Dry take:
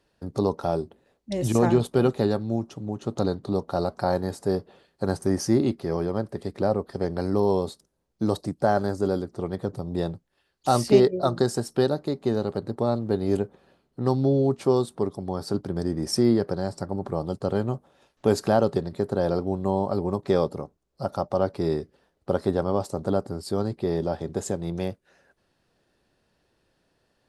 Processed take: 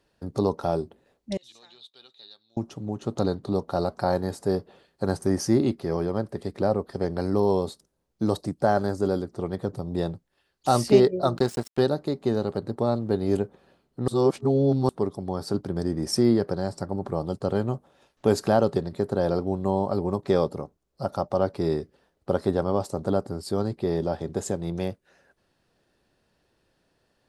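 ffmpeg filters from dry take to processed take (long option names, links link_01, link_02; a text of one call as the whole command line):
ffmpeg -i in.wav -filter_complex "[0:a]asettb=1/sr,asplit=3[link_01][link_02][link_03];[link_01]atrim=end=1.374[link_04];[link_02]atrim=start=1.37:end=2.57,asetpts=PTS-STARTPTS,afade=type=in:duration=0.004:curve=qsin,afade=type=out:start_time=1.196:duration=0.004:curve=qsin,bandpass=frequency=3800:width_type=q:width=8.9[link_05];[link_03]atrim=start=2.566[link_06];[link_04][link_05]acrossfade=duration=0.004:curve1=hsin:curve2=qsin[link_07];[link_07][link_06]acrossfade=duration=0.004:curve1=qsin:curve2=hsin,asettb=1/sr,asplit=3[link_08][link_09][link_10];[link_08]atrim=end=11.374[link_11];[link_09]atrim=start=11.37:end=11.8,asetpts=PTS-STARTPTS,afade=type=in:duration=0.004:curve=qsin,afade=type=out:start_time=0.426:duration=0.004:curve=qsin,aeval=exprs='sgn(val(0))*max(abs(val(0))-0.0168,0)':channel_layout=same[link_12];[link_10]atrim=start=11.796[link_13];[link_11][link_12]acrossfade=duration=0.004:curve1=hsin:curve2=qsin[link_14];[link_14][link_13]acrossfade=duration=0.004:curve1=qsin:curve2=hsin,asplit=3[link_15][link_16][link_17];[link_15]atrim=end=14.082[link_18];[link_16]atrim=start=14.078:end=14.892,asetpts=PTS-STARTPTS,areverse[link_19];[link_17]atrim=start=14.888[link_20];[link_18][link_19]acrossfade=duration=0.004:curve1=hsin:curve2=hsin[link_21];[link_21][link_20]acrossfade=duration=0.004:curve1=hsin:curve2=hsin" out.wav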